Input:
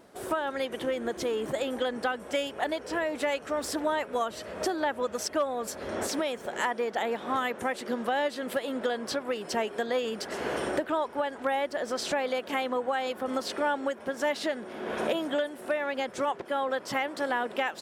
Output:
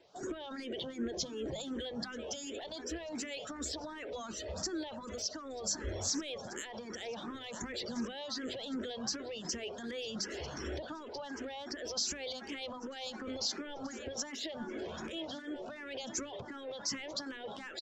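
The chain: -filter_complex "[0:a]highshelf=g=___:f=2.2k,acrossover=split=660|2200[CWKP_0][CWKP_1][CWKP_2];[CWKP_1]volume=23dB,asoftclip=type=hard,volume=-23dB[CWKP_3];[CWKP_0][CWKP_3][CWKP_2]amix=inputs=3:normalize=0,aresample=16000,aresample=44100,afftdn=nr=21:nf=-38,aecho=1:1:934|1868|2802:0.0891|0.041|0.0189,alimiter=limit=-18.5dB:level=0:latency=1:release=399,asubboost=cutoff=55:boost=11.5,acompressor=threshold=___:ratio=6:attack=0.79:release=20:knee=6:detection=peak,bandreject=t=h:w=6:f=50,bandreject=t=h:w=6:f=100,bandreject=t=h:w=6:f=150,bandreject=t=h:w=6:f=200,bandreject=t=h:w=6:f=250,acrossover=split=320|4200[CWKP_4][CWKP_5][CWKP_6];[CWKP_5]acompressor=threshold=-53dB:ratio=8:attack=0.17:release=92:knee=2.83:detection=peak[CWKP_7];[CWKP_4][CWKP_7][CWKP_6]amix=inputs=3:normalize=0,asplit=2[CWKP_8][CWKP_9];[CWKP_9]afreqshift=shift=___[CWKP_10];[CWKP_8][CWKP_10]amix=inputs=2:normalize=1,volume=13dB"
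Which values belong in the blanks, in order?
10, -41dB, 2.7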